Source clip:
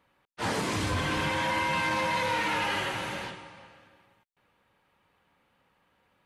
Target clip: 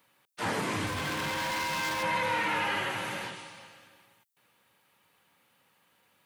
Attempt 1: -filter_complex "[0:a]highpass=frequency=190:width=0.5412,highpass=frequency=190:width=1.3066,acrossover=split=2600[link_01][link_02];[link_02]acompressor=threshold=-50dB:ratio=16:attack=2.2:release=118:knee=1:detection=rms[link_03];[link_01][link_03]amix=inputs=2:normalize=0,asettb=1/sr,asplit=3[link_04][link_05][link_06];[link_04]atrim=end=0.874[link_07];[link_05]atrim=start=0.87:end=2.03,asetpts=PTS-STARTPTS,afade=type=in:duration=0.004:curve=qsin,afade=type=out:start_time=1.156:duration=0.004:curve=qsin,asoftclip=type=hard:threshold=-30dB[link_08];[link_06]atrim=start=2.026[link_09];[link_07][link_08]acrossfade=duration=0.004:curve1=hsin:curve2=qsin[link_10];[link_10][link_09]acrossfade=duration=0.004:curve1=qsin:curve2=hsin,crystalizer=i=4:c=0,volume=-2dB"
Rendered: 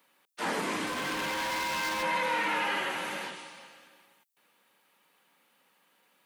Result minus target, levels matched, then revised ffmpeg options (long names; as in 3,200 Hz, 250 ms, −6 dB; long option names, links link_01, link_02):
125 Hz band −9.0 dB
-filter_complex "[0:a]highpass=frequency=94:width=0.5412,highpass=frequency=94:width=1.3066,acrossover=split=2600[link_01][link_02];[link_02]acompressor=threshold=-50dB:ratio=16:attack=2.2:release=118:knee=1:detection=rms[link_03];[link_01][link_03]amix=inputs=2:normalize=0,asettb=1/sr,asplit=3[link_04][link_05][link_06];[link_04]atrim=end=0.874[link_07];[link_05]atrim=start=0.87:end=2.03,asetpts=PTS-STARTPTS,afade=type=in:duration=0.004:curve=qsin,afade=type=out:start_time=1.156:duration=0.004:curve=qsin,asoftclip=type=hard:threshold=-30dB[link_08];[link_06]atrim=start=2.026[link_09];[link_07][link_08]acrossfade=duration=0.004:curve1=hsin:curve2=qsin[link_10];[link_10][link_09]acrossfade=duration=0.004:curve1=qsin:curve2=hsin,crystalizer=i=4:c=0,volume=-2dB"